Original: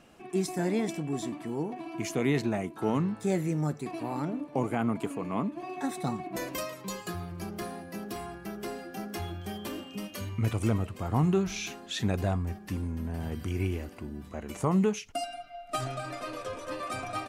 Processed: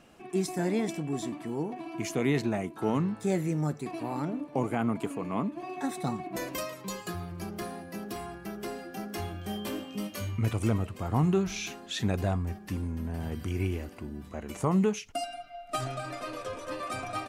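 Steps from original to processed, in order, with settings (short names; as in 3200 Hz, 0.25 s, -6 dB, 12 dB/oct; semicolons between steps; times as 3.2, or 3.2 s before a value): 9.16–10.37 doubler 19 ms -4 dB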